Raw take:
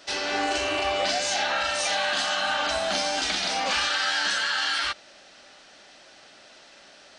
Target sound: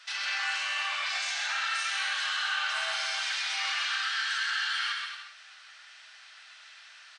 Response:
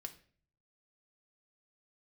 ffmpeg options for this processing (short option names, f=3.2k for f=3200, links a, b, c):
-filter_complex "[0:a]highpass=f=1.2k:w=0.5412,highpass=f=1.2k:w=1.3066,alimiter=limit=-23.5dB:level=0:latency=1:release=15,aecho=1:1:130|227.5|300.6|355.5|396.6:0.631|0.398|0.251|0.158|0.1,asplit=2[a][b];[1:a]atrim=start_sample=2205,lowpass=4.2k[c];[b][c]afir=irnorm=-1:irlink=0,volume=2.5dB[d];[a][d]amix=inputs=2:normalize=0,volume=-4dB" -ar 22050 -c:a aac -b:a 64k